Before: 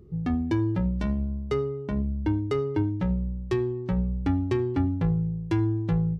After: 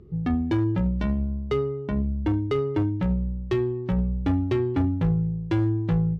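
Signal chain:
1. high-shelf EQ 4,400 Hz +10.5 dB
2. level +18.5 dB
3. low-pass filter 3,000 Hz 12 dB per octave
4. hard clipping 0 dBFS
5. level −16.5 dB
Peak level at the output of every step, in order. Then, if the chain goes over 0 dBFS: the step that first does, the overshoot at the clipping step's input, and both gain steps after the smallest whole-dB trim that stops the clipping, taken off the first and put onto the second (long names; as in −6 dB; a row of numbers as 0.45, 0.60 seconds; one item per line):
−13.5, +5.0, +5.0, 0.0, −16.5 dBFS
step 2, 5.0 dB
step 2 +13.5 dB, step 5 −11.5 dB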